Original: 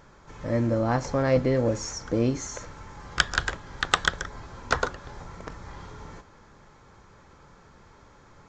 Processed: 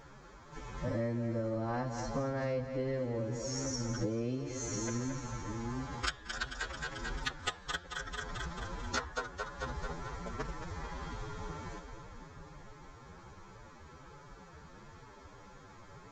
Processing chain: on a send: split-band echo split 320 Hz, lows 0.377 s, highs 0.116 s, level -8.5 dB; on the sum: compressor 20:1, threshold -31 dBFS, peak gain reduction 17.5 dB; time stretch by phase-locked vocoder 1.9×

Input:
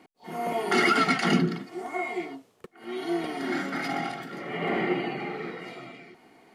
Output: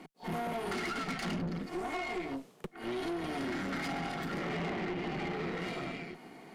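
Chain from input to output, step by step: compressor 10:1, threshold -35 dBFS, peak gain reduction 17.5 dB; resonant low shelf 110 Hz -11.5 dB, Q 3; tube stage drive 39 dB, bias 0.7; gain +7 dB

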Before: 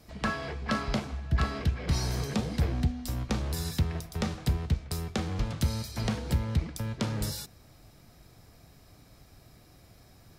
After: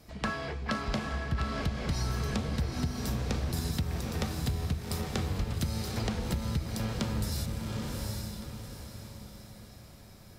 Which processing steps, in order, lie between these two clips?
diffused feedback echo 0.813 s, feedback 41%, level -4 dB; compressor, threshold -27 dBFS, peak gain reduction 8.5 dB

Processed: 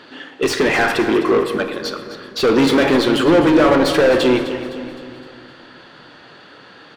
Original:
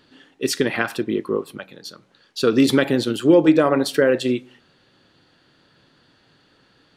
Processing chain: overdrive pedal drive 30 dB, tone 1600 Hz, clips at -2.5 dBFS; feedback echo 0.257 s, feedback 51%, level -13 dB; on a send at -8.5 dB: reverb RT60 1.9 s, pre-delay 20 ms; on the sum: gain -3.5 dB

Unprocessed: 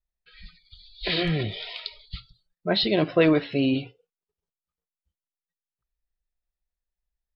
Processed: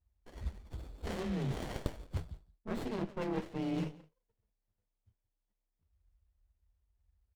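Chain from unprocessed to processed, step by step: frequency shift +33 Hz; low shelf 100 Hz +9.5 dB; reverse; compressor 12:1, threshold -35 dBFS, peak gain reduction 21.5 dB; reverse; echo 0.172 s -21.5 dB; running maximum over 33 samples; gain +3 dB

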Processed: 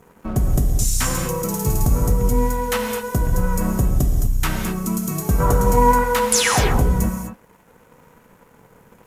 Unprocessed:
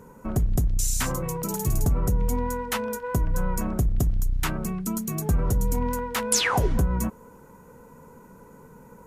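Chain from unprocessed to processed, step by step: 5.4–6.04 bell 1100 Hz +13 dB 2.1 oct; crossover distortion -48.5 dBFS; non-linear reverb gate 0.27 s flat, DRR 2 dB; gain +4 dB

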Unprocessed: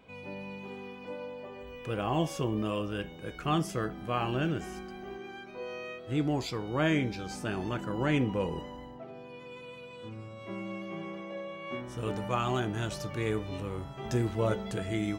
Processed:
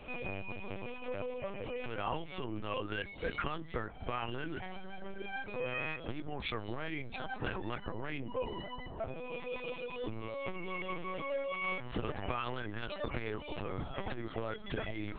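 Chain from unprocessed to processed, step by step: reverb removal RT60 0.84 s; notches 50/100/150/200/250 Hz; dynamic EQ 1900 Hz, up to +7 dB, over -49 dBFS, Q 0.72; compressor 10:1, threshold -40 dBFS, peak gain reduction 18.5 dB; LPC vocoder at 8 kHz pitch kept; core saturation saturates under 120 Hz; gain +9 dB

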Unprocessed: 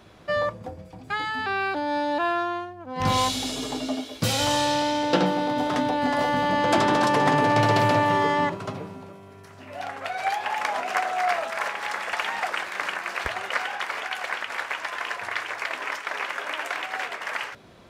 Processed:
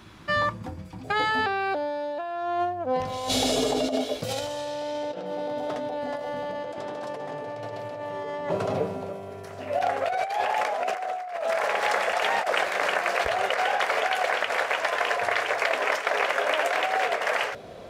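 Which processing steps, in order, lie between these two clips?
band shelf 560 Hz -9 dB 1 oct, from 1.03 s +9.5 dB; negative-ratio compressor -27 dBFS, ratio -1; gain -1 dB

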